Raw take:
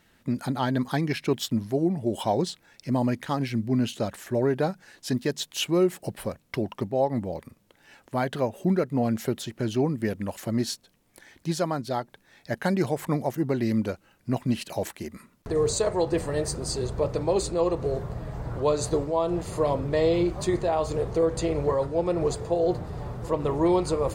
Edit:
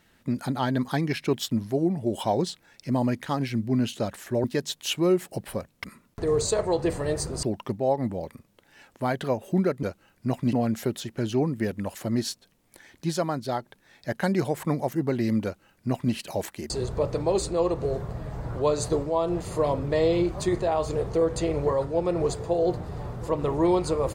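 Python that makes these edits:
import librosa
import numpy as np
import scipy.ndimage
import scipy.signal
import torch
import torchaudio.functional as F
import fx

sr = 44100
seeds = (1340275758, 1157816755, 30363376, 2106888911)

y = fx.edit(x, sr, fx.cut(start_s=4.44, length_s=0.71),
    fx.duplicate(start_s=13.86, length_s=0.7, to_s=8.95),
    fx.move(start_s=15.12, length_s=1.59, to_s=6.55), tone=tone)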